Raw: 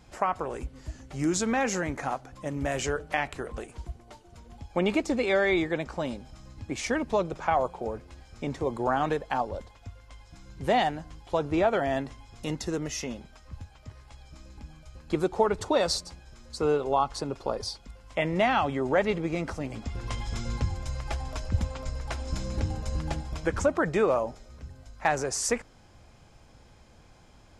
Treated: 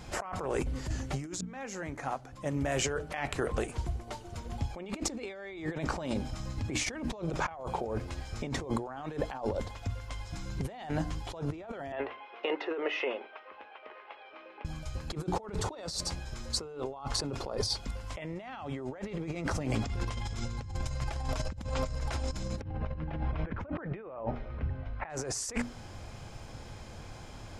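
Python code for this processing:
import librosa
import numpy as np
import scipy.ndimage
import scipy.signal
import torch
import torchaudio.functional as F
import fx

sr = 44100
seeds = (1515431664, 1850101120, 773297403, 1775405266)

y = fx.ellip_bandpass(x, sr, low_hz=400.0, high_hz=2800.0, order=3, stop_db=50, at=(11.92, 14.65))
y = fx.lowpass(y, sr, hz=2700.0, slope=24, at=(22.61, 25.1))
y = fx.edit(y, sr, fx.fade_in_span(start_s=1.41, length_s=3.21), tone=tone)
y = fx.peak_eq(y, sr, hz=110.0, db=4.5, octaves=0.47)
y = fx.hum_notches(y, sr, base_hz=60, count=5)
y = fx.over_compress(y, sr, threshold_db=-38.0, ratio=-1.0)
y = y * librosa.db_to_amplitude(2.0)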